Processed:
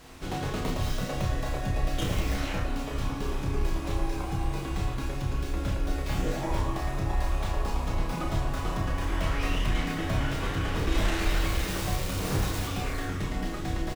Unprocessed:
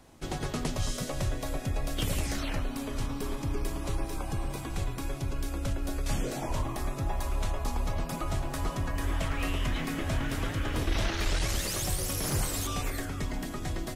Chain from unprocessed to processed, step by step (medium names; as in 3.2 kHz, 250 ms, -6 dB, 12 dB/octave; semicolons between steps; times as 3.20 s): tracing distortion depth 0.25 ms; added noise pink -51 dBFS; treble shelf 9.6 kHz -10 dB; doubling 31 ms -5 dB; on a send: reverberation RT60 0.65 s, pre-delay 5 ms, DRR 2.5 dB